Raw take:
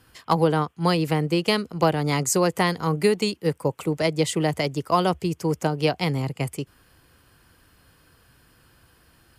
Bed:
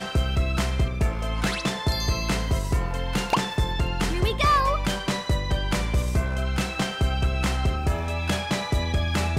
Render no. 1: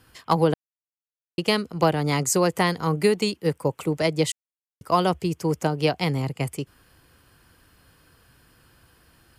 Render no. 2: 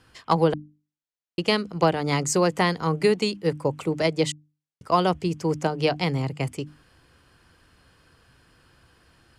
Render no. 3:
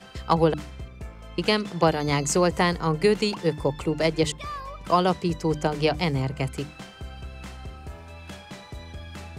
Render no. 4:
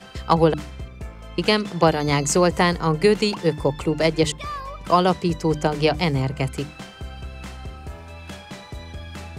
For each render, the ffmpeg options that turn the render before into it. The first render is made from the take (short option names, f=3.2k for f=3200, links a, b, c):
-filter_complex "[0:a]asplit=5[a][b][c][d][e];[a]atrim=end=0.54,asetpts=PTS-STARTPTS,afade=t=out:st=0.536:d=0.004:c=hsin[f];[b]atrim=start=0.54:end=1.38,asetpts=PTS-STARTPTS,volume=0[g];[c]atrim=start=1.38:end=4.32,asetpts=PTS-STARTPTS,afade=t=in:d=0.004:c=hsin,afade=t=out:st=2.936:d=0.004:c=hsin[h];[d]atrim=start=4.32:end=4.81,asetpts=PTS-STARTPTS,volume=0[i];[e]atrim=start=4.81,asetpts=PTS-STARTPTS,afade=t=in:d=0.004:c=hsin[j];[f][g][h][i][j]concat=n=5:v=0:a=1"
-af "lowpass=7.6k,bandreject=f=50:t=h:w=6,bandreject=f=100:t=h:w=6,bandreject=f=150:t=h:w=6,bandreject=f=200:t=h:w=6,bandreject=f=250:t=h:w=6,bandreject=f=300:t=h:w=6"
-filter_complex "[1:a]volume=-15dB[a];[0:a][a]amix=inputs=2:normalize=0"
-af "volume=3.5dB"